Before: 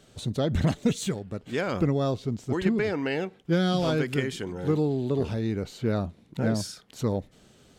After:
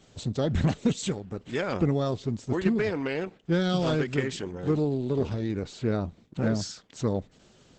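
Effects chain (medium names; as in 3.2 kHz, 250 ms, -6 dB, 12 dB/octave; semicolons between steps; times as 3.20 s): 5.04–6.51 s: gate -53 dBFS, range -10 dB; vibrato 1.2 Hz 8.9 cents; Opus 10 kbps 48 kHz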